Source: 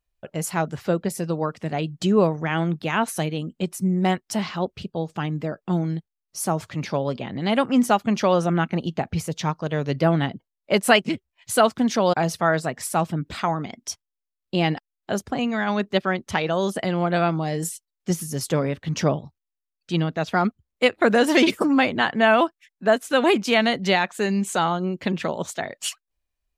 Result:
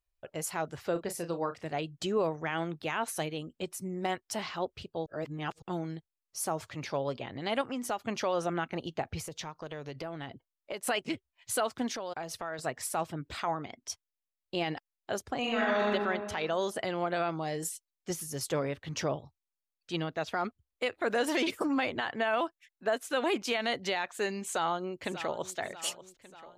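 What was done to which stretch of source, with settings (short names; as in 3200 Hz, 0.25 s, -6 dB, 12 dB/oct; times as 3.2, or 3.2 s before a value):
0.92–1.62 doubler 35 ms -10 dB
5.06–5.62 reverse
7.61–8.01 compressor 4:1, threshold -22 dBFS
9.26–10.87 compressor, threshold -27 dBFS
11.88–12.59 compressor 5:1, threshold -27 dBFS
13.45–13.9 high shelf 6400 Hz -9.5 dB
15.39–15.88 reverb throw, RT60 1.6 s, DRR -5.5 dB
24.44–25.57 echo throw 0.59 s, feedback 55%, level -15 dB
whole clip: bell 190 Hz -11.5 dB 0.84 oct; limiter -14 dBFS; gain -6 dB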